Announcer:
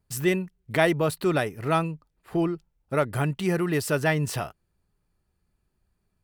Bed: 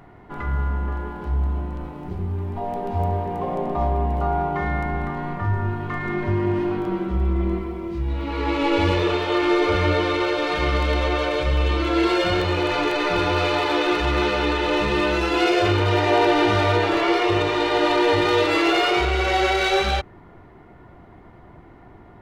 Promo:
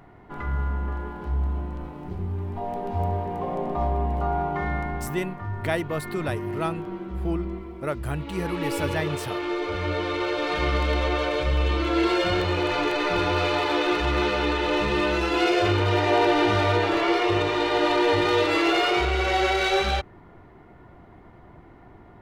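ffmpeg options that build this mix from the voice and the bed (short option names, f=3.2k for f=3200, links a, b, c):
-filter_complex "[0:a]adelay=4900,volume=-5dB[a];[1:a]volume=3.5dB,afade=t=out:st=4.72:d=0.58:silence=0.501187,afade=t=in:st=9.72:d=0.86:silence=0.473151[b];[a][b]amix=inputs=2:normalize=0"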